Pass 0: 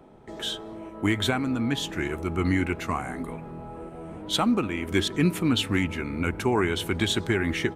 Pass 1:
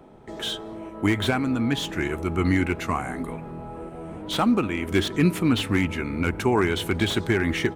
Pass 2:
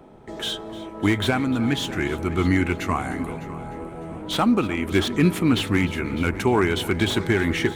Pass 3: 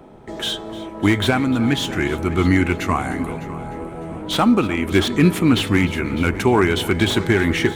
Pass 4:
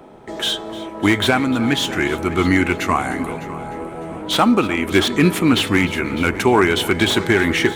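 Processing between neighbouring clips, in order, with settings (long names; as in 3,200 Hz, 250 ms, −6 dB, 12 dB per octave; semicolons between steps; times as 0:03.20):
slew-rate limiting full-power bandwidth 140 Hz; level +2.5 dB
echo machine with several playback heads 302 ms, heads first and second, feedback 40%, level −18 dB; level +1.5 dB
hum removal 434.5 Hz, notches 20; level +4 dB
low-shelf EQ 200 Hz −9 dB; level +3.5 dB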